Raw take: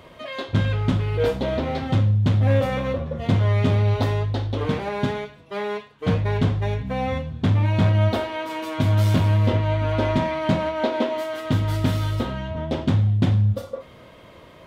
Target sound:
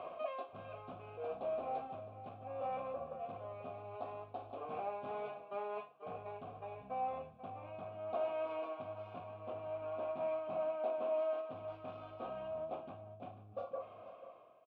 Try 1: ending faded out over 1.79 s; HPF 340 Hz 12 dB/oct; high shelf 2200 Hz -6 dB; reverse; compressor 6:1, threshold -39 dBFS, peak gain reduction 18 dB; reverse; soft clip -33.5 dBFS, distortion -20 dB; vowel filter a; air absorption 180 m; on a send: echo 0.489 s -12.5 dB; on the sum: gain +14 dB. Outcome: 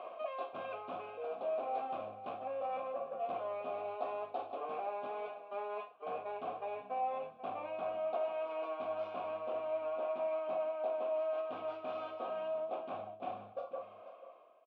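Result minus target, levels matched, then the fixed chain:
250 Hz band -3.0 dB
ending faded out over 1.79 s; high shelf 2200 Hz -6 dB; reverse; compressor 6:1, threshold -39 dBFS, peak gain reduction 22 dB; reverse; soft clip -33.5 dBFS, distortion -20 dB; vowel filter a; air absorption 180 m; on a send: echo 0.489 s -12.5 dB; on the sum: gain +14 dB

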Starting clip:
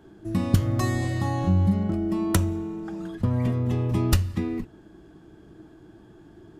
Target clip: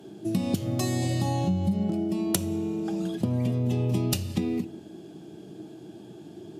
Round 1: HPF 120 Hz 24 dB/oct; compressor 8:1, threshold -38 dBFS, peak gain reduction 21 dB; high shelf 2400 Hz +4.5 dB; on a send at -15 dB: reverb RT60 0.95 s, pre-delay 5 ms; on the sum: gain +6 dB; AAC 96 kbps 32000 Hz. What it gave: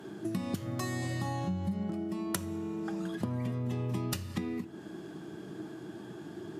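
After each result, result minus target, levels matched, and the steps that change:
compressor: peak gain reduction +8 dB; 1000 Hz band +4.5 dB
change: compressor 8:1, threshold -29 dBFS, peak gain reduction 13 dB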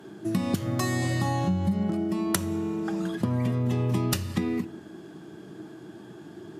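1000 Hz band +3.0 dB
add after HPF: band shelf 1400 Hz -10 dB 1.3 oct

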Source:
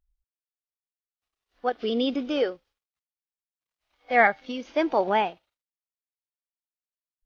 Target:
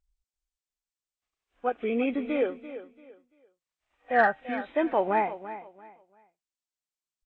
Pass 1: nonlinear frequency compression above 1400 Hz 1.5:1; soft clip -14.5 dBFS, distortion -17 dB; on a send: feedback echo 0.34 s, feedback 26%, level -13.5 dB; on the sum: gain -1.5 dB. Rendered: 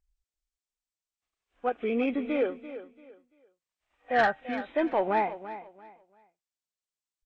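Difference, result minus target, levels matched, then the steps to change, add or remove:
soft clip: distortion +11 dB
change: soft clip -7 dBFS, distortion -28 dB

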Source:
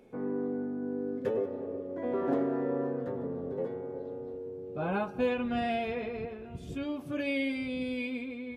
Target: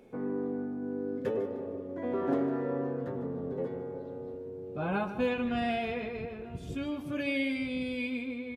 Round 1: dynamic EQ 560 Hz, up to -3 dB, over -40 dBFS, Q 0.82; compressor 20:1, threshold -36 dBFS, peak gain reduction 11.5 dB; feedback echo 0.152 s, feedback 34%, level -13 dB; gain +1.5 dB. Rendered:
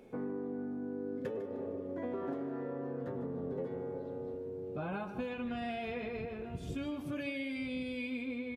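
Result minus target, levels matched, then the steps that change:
compressor: peak gain reduction +11.5 dB
remove: compressor 20:1, threshold -36 dBFS, peak gain reduction 11.5 dB

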